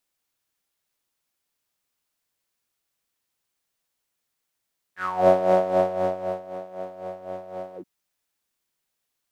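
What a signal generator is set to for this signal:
subtractive patch with tremolo F#3, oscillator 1 saw, oscillator 2 square, interval −12 semitones, oscillator 2 level −9 dB, noise −9.5 dB, filter bandpass, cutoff 220 Hz, Q 10, filter envelope 3 octaves, filter decay 0.27 s, filter sustain 50%, attack 323 ms, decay 1.18 s, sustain −18 dB, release 0.08 s, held 2.80 s, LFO 3.9 Hz, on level 11.5 dB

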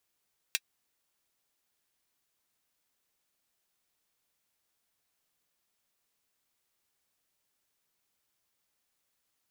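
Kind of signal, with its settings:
closed synth hi-hat, high-pass 2,300 Hz, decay 0.05 s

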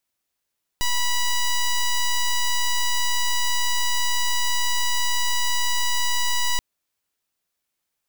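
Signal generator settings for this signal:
pulse wave 978 Hz, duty 8% −20.5 dBFS 5.78 s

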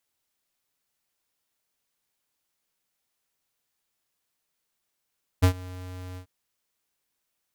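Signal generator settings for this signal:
note with an ADSR envelope square 91.5 Hz, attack 19 ms, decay 88 ms, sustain −23 dB, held 0.75 s, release 90 ms −15.5 dBFS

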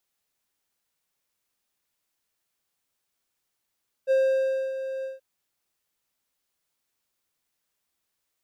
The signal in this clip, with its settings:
note with an ADSR envelope triangle 531 Hz, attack 39 ms, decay 617 ms, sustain −11.5 dB, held 0.97 s, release 159 ms −15.5 dBFS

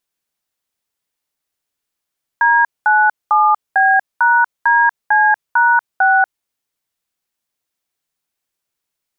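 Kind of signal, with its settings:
touch tones "D97B#DC#6", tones 239 ms, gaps 210 ms, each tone −11.5 dBFS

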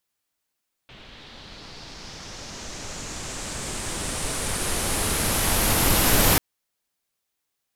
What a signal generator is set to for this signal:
filter sweep on noise pink, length 5.49 s lowpass, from 3,200 Hz, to 13,000 Hz, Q 2.7, linear, gain ramp +28.5 dB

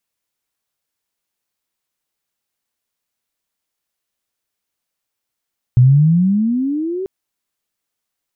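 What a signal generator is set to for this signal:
pitch glide with a swell sine, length 1.29 s, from 120 Hz, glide +20.5 semitones, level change −15 dB, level −5 dB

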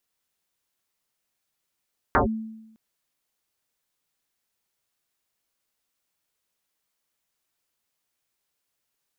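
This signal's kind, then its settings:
two-operator FM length 0.61 s, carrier 221 Hz, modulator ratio 0.75, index 9.8, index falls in 0.12 s linear, decay 0.93 s, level −14 dB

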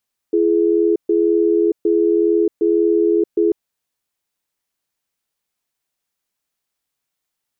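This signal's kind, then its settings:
tone pair in a cadence 338 Hz, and 420 Hz, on 0.63 s, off 0.13 s, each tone −15 dBFS 3.19 s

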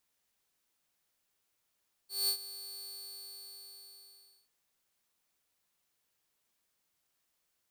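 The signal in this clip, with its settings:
note with an ADSR envelope saw 4,450 Hz, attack 195 ms, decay 84 ms, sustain −16 dB, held 0.73 s, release 1,670 ms −24.5 dBFS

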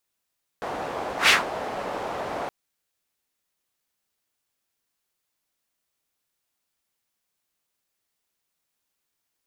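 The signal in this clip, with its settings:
pass-by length 1.87 s, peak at 0:00.67, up 0.12 s, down 0.17 s, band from 700 Hz, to 2,600 Hz, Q 1.5, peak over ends 15.5 dB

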